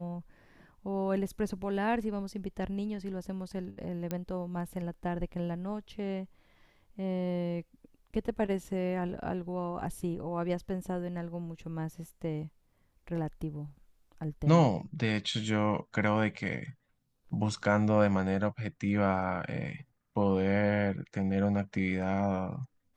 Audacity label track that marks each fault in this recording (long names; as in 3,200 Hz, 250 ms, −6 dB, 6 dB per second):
4.110000	4.110000	click −20 dBFS